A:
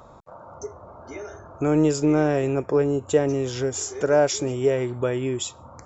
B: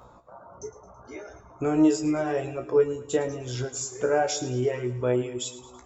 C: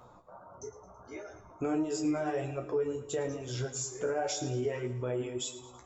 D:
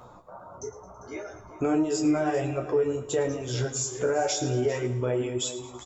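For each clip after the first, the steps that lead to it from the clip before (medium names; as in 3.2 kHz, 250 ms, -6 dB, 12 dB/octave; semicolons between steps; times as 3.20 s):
feedback comb 62 Hz, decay 0.39 s, harmonics all, mix 90%; reverb removal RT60 1.6 s; two-band feedback delay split 390 Hz, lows 198 ms, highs 109 ms, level -15 dB; trim +5.5 dB
peak limiter -20.5 dBFS, peak gain reduction 10 dB; flange 1.6 Hz, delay 7.8 ms, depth 4.2 ms, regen -48%; on a send at -15.5 dB: reverberation RT60 1.2 s, pre-delay 6 ms
delay 397 ms -16 dB; trim +6.5 dB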